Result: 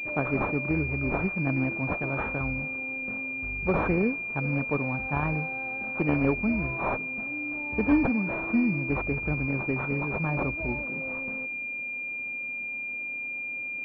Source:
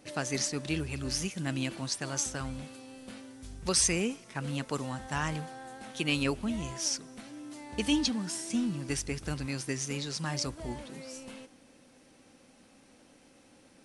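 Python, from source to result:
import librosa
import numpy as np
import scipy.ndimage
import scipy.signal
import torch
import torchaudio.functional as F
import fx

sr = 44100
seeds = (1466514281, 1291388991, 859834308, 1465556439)

y = fx.pwm(x, sr, carrier_hz=2400.0)
y = y * librosa.db_to_amplitude(6.0)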